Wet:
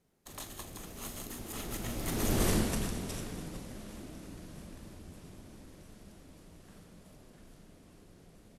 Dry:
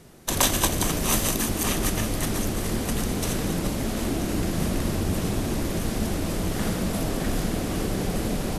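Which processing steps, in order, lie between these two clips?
Doppler pass-by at 2.45 s, 23 m/s, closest 3.4 m; doubling 42 ms -12 dB

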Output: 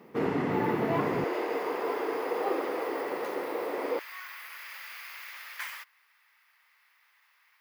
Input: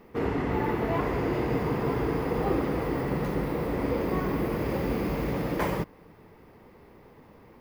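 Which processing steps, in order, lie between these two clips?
high-pass 130 Hz 24 dB/octave, from 1.24 s 380 Hz, from 3.99 s 1.5 kHz

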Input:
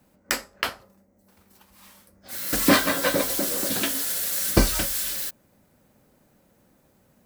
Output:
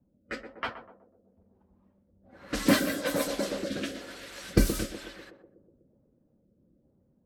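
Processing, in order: coarse spectral quantiser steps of 15 dB; level-controlled noise filter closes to 440 Hz, open at -18.5 dBFS; on a send: band-passed feedback delay 123 ms, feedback 65%, band-pass 430 Hz, level -7 dB; on the sum: rotary cabinet horn 1.1 Hz; trim -2.5 dB

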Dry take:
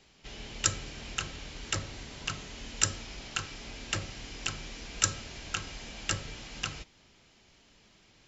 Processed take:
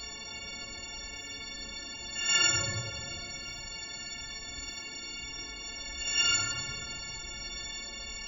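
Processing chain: partials quantised in pitch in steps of 4 st; crackle 12 per s -42 dBFS; Paulstretch 7.2×, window 0.05 s, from 3.60 s; trim -4 dB

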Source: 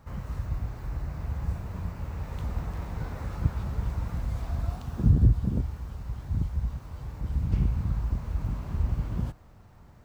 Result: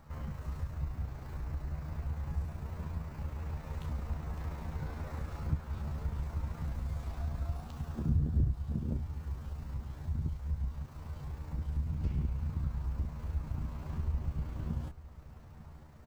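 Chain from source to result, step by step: compression 1.5:1, threshold -40 dBFS, peak gain reduction 9.5 dB; granular stretch 1.6×, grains 70 ms; delay 899 ms -17.5 dB

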